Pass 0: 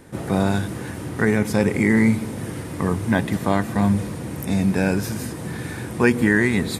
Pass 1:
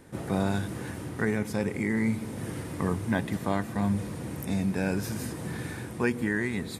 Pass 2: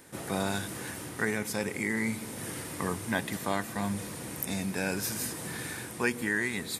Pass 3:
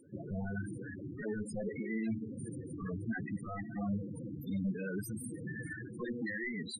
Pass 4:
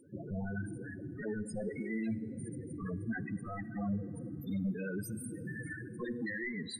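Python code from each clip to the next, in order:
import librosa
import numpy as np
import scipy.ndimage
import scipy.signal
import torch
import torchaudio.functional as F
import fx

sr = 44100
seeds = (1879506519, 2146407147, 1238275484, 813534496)

y1 = fx.rider(x, sr, range_db=3, speed_s=0.5)
y1 = y1 * 10.0 ** (-8.0 / 20.0)
y2 = fx.tilt_eq(y1, sr, slope=2.5)
y3 = 10.0 ** (-28.5 / 20.0) * (np.abs((y2 / 10.0 ** (-28.5 / 20.0) + 3.0) % 4.0 - 2.0) - 1.0)
y3 = fx.spec_topn(y3, sr, count=8)
y3 = y3 * 10.0 ** (1.0 / 20.0)
y4 = fx.rev_plate(y3, sr, seeds[0], rt60_s=3.4, hf_ratio=0.7, predelay_ms=0, drr_db=18.0)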